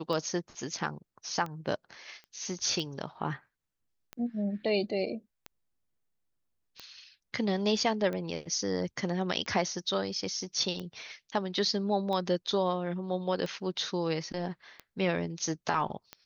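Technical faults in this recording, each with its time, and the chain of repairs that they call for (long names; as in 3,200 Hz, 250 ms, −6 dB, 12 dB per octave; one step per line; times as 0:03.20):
scratch tick 45 rpm −24 dBFS
0:02.24: click −36 dBFS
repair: click removal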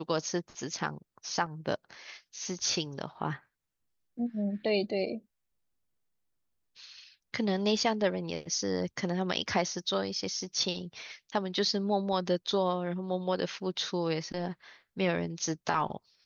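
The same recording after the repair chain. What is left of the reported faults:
none of them is left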